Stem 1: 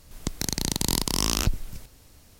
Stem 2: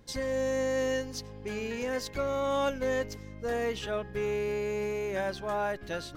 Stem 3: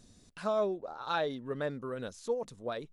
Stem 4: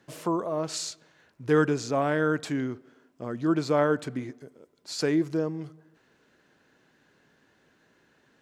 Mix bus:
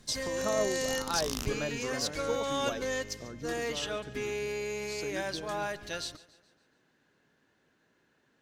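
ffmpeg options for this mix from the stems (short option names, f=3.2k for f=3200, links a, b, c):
-filter_complex "[0:a]aeval=exprs='sgn(val(0))*max(abs(val(0))-0.00473,0)':c=same,volume=-5dB[a];[1:a]equalizer=f=6.1k:w=0.36:g=13,volume=-5.5dB,asplit=2[b][c];[c]volume=-19.5dB[d];[2:a]volume=-1dB[e];[3:a]acompressor=threshold=-33dB:ratio=6,volume=-6.5dB,asplit=2[f][g];[g]apad=whole_len=105593[h];[a][h]sidechaincompress=threshold=-51dB:ratio=8:attack=10:release=983[i];[d]aecho=0:1:142|284|426|568|710|852|994:1|0.48|0.23|0.111|0.0531|0.0255|0.0122[j];[i][b][e][f][j]amix=inputs=5:normalize=0"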